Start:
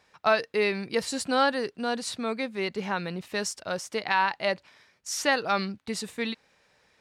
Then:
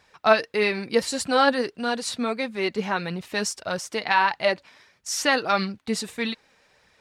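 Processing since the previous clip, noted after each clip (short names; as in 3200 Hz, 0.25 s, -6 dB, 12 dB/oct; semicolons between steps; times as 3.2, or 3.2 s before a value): flange 1.6 Hz, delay 0.5 ms, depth 4.1 ms, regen +52%; gain +8 dB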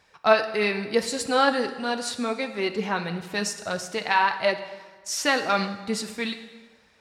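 plate-style reverb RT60 1.4 s, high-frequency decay 0.8×, DRR 8.5 dB; gain -1.5 dB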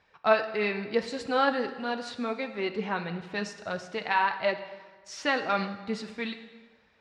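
LPF 3600 Hz 12 dB/oct; gain -4 dB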